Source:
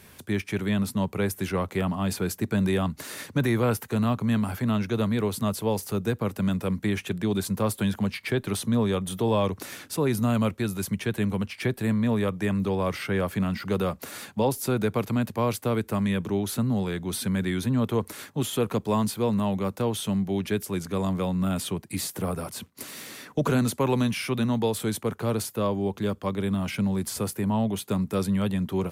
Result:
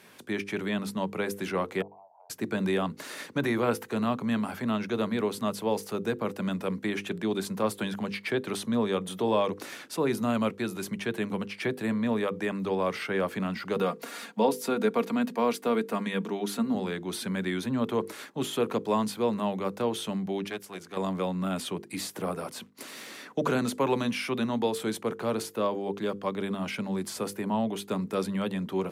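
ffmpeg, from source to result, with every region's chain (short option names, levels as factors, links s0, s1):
-filter_complex "[0:a]asettb=1/sr,asplit=3[s0][s1][s2];[s0]atrim=end=1.824[s3];[s1]atrim=start=1.82:end=2.3,asetpts=PTS-STARTPTS,afade=t=in:d=0.004:c=qsin,afade=t=out:st=0.476:d=0.004:c=qsin,asuperpass=centerf=770:order=8:qfactor=2.3,acompressor=threshold=0.00282:ratio=5:attack=3.2:release=140:knee=1:detection=peak[s4];[s2]atrim=start=2.296[s5];[s3][s4]acrossfade=d=0.004:c1=hsin:c2=qsin[s6];[s6][s5]acrossfade=d=0.004:c1=qsin:c2=hsin,asettb=1/sr,asplit=3[s7][s8][s9];[s7]atrim=end=13.764[s10];[s8]atrim=start=13.76:end=16.75,asetpts=PTS-STARTPTS,afade=t=in:d=0.004:c=qsin,afade=t=out:st=2.986:d=0.004:c=qsin,highpass=f=150:w=0.5412,highpass=f=150:w=1.3066,aecho=1:1:4.3:0.48,atrim=end_sample=131859[s11];[s9]atrim=start=16.746[s12];[s10][s11]acrossfade=d=0.004:c1=hsin:c2=qsin[s13];[s13][s12]acrossfade=d=0.004:c1=qsin:c2=hsin,asettb=1/sr,asplit=3[s14][s15][s16];[s14]atrim=end=20.484[s17];[s15]atrim=start=20.48:end=20.97,asetpts=PTS-STARTPTS,afade=t=in:d=0.004:c=qsin,afade=t=out:st=0.486:d=0.004:c=qsin,aeval=exprs='(tanh(10*val(0)+0.75)-tanh(0.75))/10':c=same,equalizer=f=210:w=0.49:g=-7[s18];[s16]atrim=start=20.966[s19];[s17][s18]acrossfade=d=0.004:c1=hsin:c2=qsin[s20];[s20][s19]acrossfade=d=0.004:c1=qsin:c2=hsin,highpass=220,highshelf=f=8300:g=-11,bandreject=f=50:t=h:w=6,bandreject=f=100:t=h:w=6,bandreject=f=150:t=h:w=6,bandreject=f=200:t=h:w=6,bandreject=f=250:t=h:w=6,bandreject=f=300:t=h:w=6,bandreject=f=350:t=h:w=6,bandreject=f=400:t=h:w=6,bandreject=f=450:t=h:w=6,bandreject=f=500:t=h:w=6"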